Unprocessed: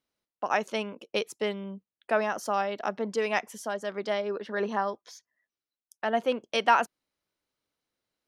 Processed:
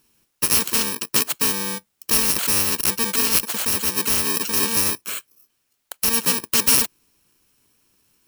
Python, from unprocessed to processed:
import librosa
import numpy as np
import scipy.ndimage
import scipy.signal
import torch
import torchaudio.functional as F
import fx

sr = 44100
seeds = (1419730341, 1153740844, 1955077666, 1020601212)

y = fx.bit_reversed(x, sr, seeds[0], block=64)
y = fx.spectral_comp(y, sr, ratio=2.0)
y = y * 10.0 ** (7.0 / 20.0)